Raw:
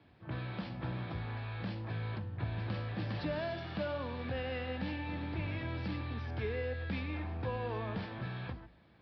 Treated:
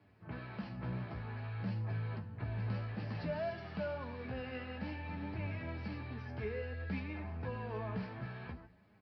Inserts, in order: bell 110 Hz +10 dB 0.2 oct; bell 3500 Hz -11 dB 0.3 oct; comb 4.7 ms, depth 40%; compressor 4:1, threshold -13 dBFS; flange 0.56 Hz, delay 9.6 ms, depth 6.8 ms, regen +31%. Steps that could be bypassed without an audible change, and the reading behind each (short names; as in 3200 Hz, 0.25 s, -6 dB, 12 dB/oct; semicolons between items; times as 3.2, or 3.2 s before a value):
compressor, threshold -13 dBFS: input peak -23.0 dBFS